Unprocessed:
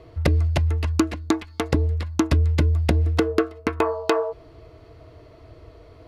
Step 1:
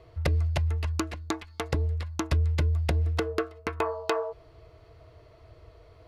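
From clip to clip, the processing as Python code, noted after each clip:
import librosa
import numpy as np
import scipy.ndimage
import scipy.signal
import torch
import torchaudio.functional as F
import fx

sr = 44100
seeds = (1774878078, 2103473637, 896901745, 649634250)

y = fx.peak_eq(x, sr, hz=260.0, db=-10.0, octaves=0.85)
y = F.gain(torch.from_numpy(y), -5.0).numpy()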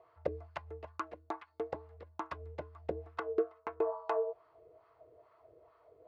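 y = fx.wah_lfo(x, sr, hz=2.3, low_hz=430.0, high_hz=1200.0, q=2.6)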